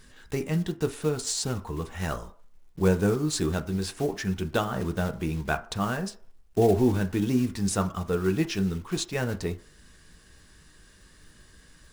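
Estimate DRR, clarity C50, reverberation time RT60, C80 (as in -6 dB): 7.0 dB, 16.5 dB, 0.50 s, 20.5 dB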